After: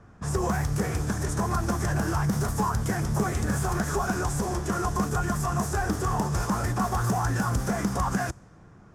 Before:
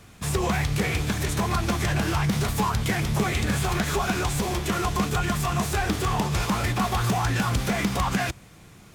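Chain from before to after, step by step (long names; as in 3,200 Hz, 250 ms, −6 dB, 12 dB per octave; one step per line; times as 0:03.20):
low-pass that shuts in the quiet parts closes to 2,800 Hz, open at −20 dBFS
flat-topped bell 3,000 Hz −13.5 dB 1.3 octaves
level −1.5 dB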